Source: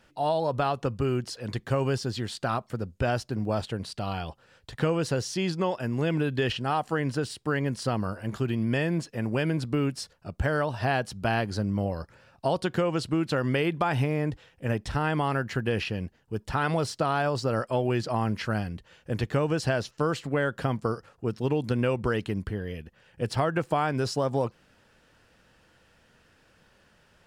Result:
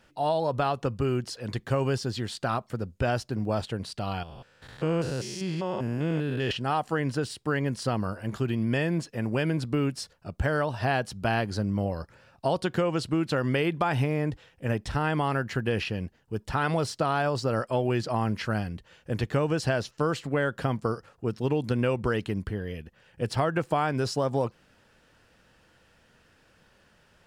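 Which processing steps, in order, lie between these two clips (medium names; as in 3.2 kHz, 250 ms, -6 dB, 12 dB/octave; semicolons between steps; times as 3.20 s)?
4.23–6.51 s: spectrogram pixelated in time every 200 ms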